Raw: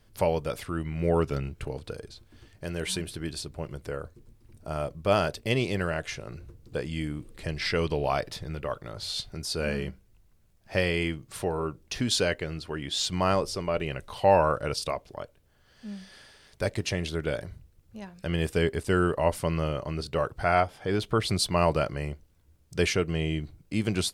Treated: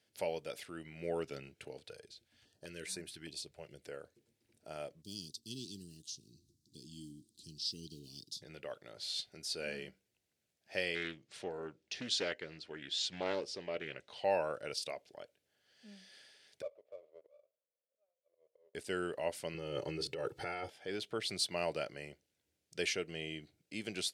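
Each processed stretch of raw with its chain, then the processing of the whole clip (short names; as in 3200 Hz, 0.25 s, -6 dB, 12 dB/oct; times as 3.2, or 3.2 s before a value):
1.84–3.82 low shelf 76 Hz +8.5 dB + stepped notch 4.9 Hz 260–3100 Hz
5.02–8.42 block floating point 7-bit + inverse Chebyshev band-stop 520–2300 Hz + bell 5700 Hz +3.5 dB 1.1 oct
10.95–14.24 LPF 6400 Hz + Doppler distortion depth 0.5 ms
16.62–18.75 auto swell 0.655 s + Butterworth band-pass 570 Hz, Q 3.7 + running maximum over 9 samples
19.54–20.7 bell 190 Hz +10 dB 2.1 oct + comb 2.3 ms, depth 89% + negative-ratio compressor -25 dBFS
whole clip: weighting filter A; de-esser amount 40%; bell 1100 Hz -14.5 dB 0.73 oct; gain -6.5 dB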